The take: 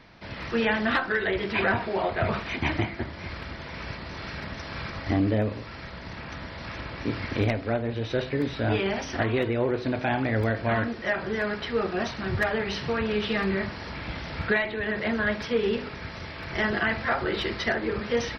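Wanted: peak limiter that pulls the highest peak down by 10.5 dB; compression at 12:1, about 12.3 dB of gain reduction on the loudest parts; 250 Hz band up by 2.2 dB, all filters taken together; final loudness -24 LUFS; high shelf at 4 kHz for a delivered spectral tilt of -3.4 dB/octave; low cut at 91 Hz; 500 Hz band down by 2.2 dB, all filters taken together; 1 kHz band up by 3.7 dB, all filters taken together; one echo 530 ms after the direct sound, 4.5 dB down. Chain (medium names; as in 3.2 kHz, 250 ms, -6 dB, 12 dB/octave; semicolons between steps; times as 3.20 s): high-pass 91 Hz; peaking EQ 250 Hz +4 dB; peaking EQ 500 Hz -6 dB; peaking EQ 1 kHz +6.5 dB; treble shelf 4 kHz +4 dB; compression 12:1, threshold -31 dBFS; peak limiter -30 dBFS; delay 530 ms -4.5 dB; trim +13 dB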